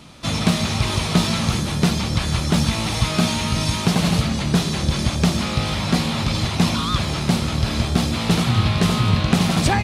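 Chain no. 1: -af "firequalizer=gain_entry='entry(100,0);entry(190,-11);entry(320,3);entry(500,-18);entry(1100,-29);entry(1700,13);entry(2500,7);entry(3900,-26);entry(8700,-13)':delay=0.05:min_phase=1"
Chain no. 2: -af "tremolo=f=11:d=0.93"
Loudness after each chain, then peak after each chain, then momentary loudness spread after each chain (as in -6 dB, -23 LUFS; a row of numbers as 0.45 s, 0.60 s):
-21.5 LUFS, -24.5 LUFS; -2.5 dBFS, -5.0 dBFS; 3 LU, 3 LU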